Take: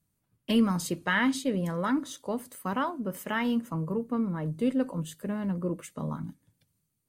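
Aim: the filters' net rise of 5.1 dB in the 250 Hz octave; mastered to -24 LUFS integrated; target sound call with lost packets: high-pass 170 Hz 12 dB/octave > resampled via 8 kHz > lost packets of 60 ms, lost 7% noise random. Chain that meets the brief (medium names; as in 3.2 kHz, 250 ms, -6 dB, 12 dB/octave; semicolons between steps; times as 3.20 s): high-pass 170 Hz 12 dB/octave; peaking EQ 250 Hz +7 dB; resampled via 8 kHz; lost packets of 60 ms, lost 7% noise random; trim +2.5 dB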